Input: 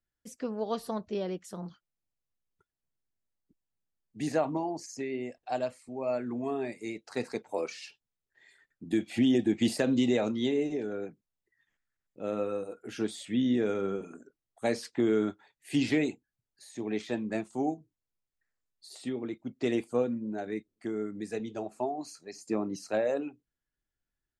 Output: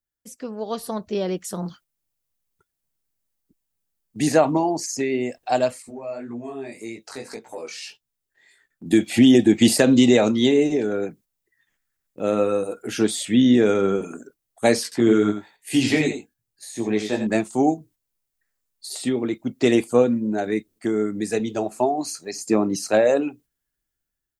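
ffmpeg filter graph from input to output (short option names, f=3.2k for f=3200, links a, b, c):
-filter_complex "[0:a]asettb=1/sr,asplit=3[a][b][c];[a]atrim=end=5.824[d];[b]atrim=start=5.82:end=8.86,asetpts=PTS-STARTPTS,afade=t=in:d=0.004:c=qsin,afade=t=out:st=3.036:d=0.004:c=qsin,acompressor=threshold=-43dB:ratio=2.5:attack=3.2:release=140:knee=1:detection=peak,flanger=delay=17:depth=5.3:speed=1.8[e];[c]atrim=start=8.856[f];[d][e]acrossfade=d=0.004:c1=hsin:c2=qsin[g];[g][f]acrossfade=d=0.004:c1=qsin:c2=hsin,asettb=1/sr,asplit=3[h][i][j];[h]atrim=end=14.834[k];[i]atrim=start=14.83:end=17.27,asetpts=PTS-STARTPTS,afade=t=in:d=0.004:c=qsin,afade=t=out:st=2.436:d=0.004:c=qsin,flanger=delay=16.5:depth=3.2:speed=1.1,aecho=1:1:86:0.376,atrim=end_sample=107604[l];[j]atrim=start=17.266[m];[k][l]acrossfade=d=0.004:c1=hsin:c2=qsin[n];[n][m]acrossfade=d=0.004:c1=qsin:c2=hsin,agate=range=-6dB:threshold=-59dB:ratio=16:detection=peak,dynaudnorm=f=460:g=5:m=10dB,highshelf=f=7.4k:g=11,volume=1.5dB"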